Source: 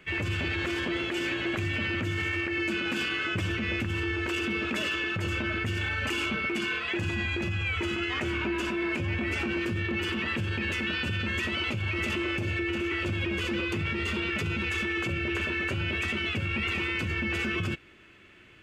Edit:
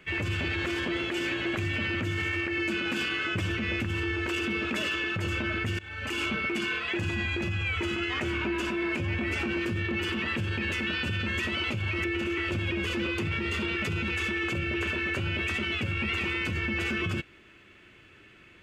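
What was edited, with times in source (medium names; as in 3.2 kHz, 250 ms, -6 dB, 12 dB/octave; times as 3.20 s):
5.79–6.23 s: fade in, from -21.5 dB
12.04–12.58 s: delete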